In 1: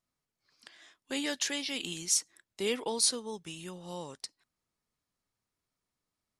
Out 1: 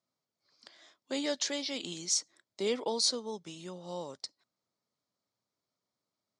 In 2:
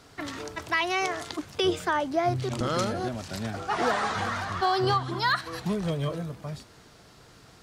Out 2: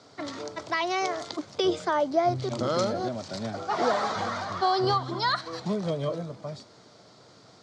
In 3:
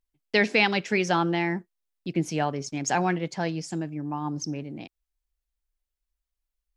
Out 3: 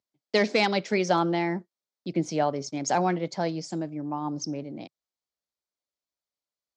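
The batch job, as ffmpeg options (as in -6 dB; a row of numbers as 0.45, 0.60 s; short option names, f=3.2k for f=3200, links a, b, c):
-af "asoftclip=type=hard:threshold=-12.5dB,highpass=f=110:w=0.5412,highpass=f=110:w=1.3066,equalizer=f=150:t=q:w=4:g=-4,equalizer=f=590:t=q:w=4:g=6,equalizer=f=1.7k:t=q:w=4:g=-6,equalizer=f=2.7k:t=q:w=4:g=-8,equalizer=f=4.5k:t=q:w=4:g=3,lowpass=f=7.1k:w=0.5412,lowpass=f=7.1k:w=1.3066"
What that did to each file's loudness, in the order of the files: -1.0, 0.0, -1.0 LU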